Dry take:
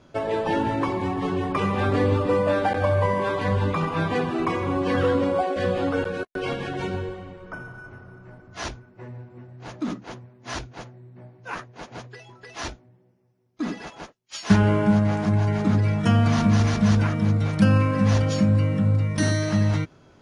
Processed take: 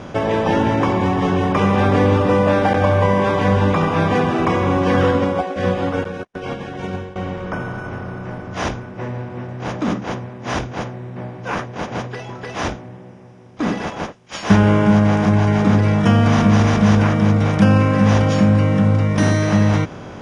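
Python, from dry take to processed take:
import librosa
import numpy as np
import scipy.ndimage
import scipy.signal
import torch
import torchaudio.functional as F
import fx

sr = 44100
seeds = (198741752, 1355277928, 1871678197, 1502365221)

y = fx.bin_compress(x, sr, power=0.6)
y = scipy.signal.sosfilt(scipy.signal.bessel(2, 6400.0, 'lowpass', norm='mag', fs=sr, output='sos'), y)
y = fx.notch(y, sr, hz=4300.0, q=7.1)
y = fx.upward_expand(y, sr, threshold_db=-29.0, expansion=2.5, at=(5.11, 7.16))
y = y * librosa.db_to_amplitude(3.0)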